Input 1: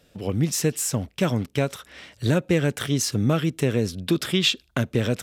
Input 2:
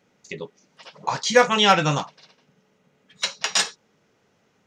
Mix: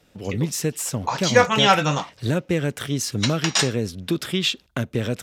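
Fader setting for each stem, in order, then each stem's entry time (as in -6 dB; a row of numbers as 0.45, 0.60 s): -1.5, 0.0 dB; 0.00, 0.00 s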